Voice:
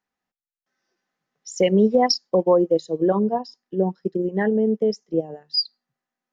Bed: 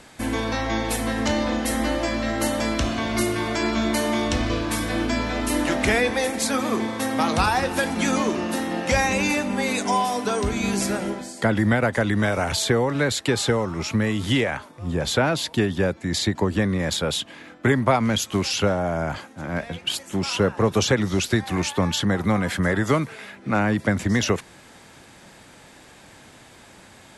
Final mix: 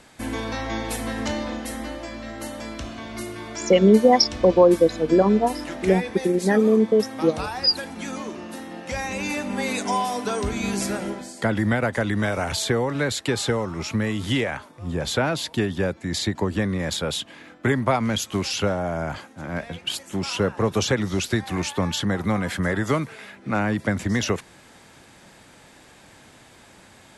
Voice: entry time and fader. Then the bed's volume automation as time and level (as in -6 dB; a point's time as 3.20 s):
2.10 s, +2.5 dB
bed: 1.22 s -3.5 dB
2.02 s -10 dB
8.85 s -10 dB
9.58 s -2 dB